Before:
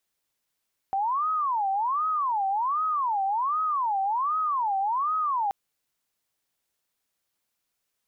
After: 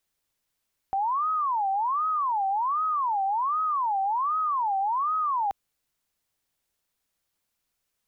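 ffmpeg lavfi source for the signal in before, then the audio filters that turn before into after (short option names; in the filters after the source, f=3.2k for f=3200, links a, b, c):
-f lavfi -i "aevalsrc='0.0708*sin(2*PI*(1021.5*t-248.5/(2*PI*1.3)*sin(2*PI*1.3*t)))':d=4.58:s=44100"
-af "lowshelf=f=100:g=9"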